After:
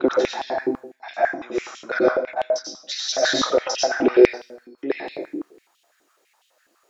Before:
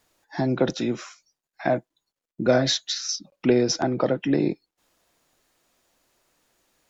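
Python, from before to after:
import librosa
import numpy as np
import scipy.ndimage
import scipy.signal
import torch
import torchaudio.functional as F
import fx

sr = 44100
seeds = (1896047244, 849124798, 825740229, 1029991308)

y = fx.block_reorder(x, sr, ms=284.0, group=3)
y = fx.rev_plate(y, sr, seeds[0], rt60_s=0.71, hf_ratio=0.6, predelay_ms=80, drr_db=-3.5)
y = fx.filter_held_highpass(y, sr, hz=12.0, low_hz=310.0, high_hz=3100.0)
y = y * 10.0 ** (-3.5 / 20.0)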